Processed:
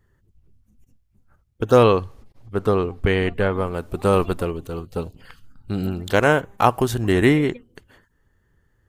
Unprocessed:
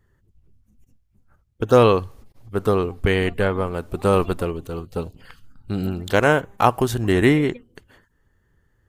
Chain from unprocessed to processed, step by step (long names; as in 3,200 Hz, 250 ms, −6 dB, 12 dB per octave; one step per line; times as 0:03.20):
0:01.82–0:03.51: high-shelf EQ 11,000 Hz → 6,200 Hz −10.5 dB